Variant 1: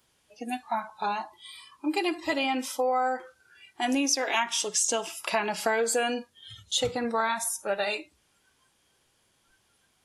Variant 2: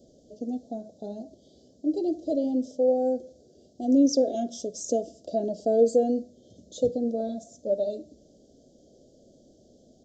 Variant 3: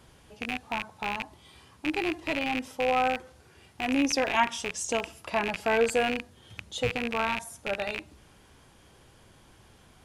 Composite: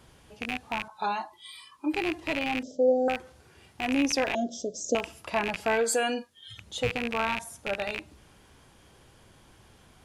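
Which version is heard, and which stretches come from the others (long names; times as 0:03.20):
3
0:00.88–0:01.93: punch in from 1
0:02.63–0:03.08: punch in from 2
0:04.35–0:04.95: punch in from 2
0:05.78–0:06.61: punch in from 1, crossfade 0.16 s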